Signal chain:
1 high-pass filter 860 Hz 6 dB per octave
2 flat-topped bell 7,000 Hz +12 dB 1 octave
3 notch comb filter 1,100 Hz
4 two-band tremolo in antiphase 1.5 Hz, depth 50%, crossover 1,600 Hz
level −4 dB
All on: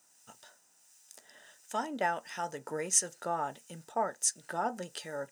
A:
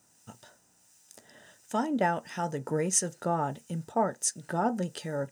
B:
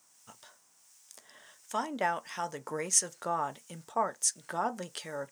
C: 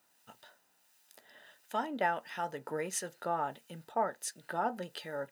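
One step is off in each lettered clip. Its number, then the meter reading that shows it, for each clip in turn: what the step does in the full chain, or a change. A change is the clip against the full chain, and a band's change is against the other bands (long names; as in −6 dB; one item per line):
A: 1, 125 Hz band +12.5 dB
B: 3, change in integrated loudness +1.0 LU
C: 2, change in crest factor −4.5 dB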